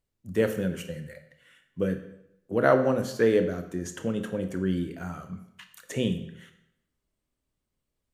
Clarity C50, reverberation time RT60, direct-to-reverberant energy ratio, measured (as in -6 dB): 10.5 dB, 0.80 s, 7.0 dB